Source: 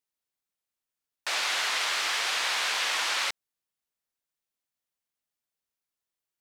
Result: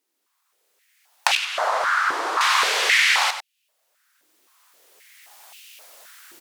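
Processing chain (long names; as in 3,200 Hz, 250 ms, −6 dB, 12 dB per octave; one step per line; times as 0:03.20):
camcorder AGC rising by 14 dB per second
0:01.35–0:02.41: high shelf with overshoot 1,700 Hz −13 dB, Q 1.5
in parallel at −1 dB: downward compressor, threshold −43 dBFS, peak gain reduction 20.5 dB
on the sum: asymmetric clip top −24.5 dBFS
on a send: single-tap delay 96 ms −10.5 dB
on the sum: high-pass on a step sequencer 3.8 Hz 320–2,700 Hz
level +5 dB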